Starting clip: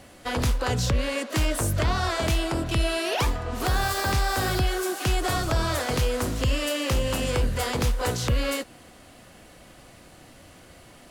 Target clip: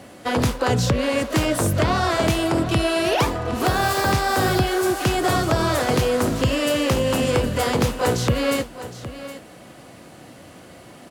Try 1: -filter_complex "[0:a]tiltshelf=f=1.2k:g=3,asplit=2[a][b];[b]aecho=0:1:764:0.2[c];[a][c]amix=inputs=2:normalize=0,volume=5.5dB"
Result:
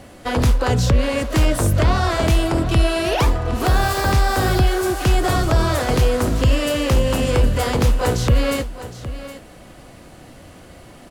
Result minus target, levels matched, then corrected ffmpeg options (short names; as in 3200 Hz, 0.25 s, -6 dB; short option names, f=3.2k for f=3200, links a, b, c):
125 Hz band +3.0 dB
-filter_complex "[0:a]highpass=120,tiltshelf=f=1.2k:g=3,asplit=2[a][b];[b]aecho=0:1:764:0.2[c];[a][c]amix=inputs=2:normalize=0,volume=5.5dB"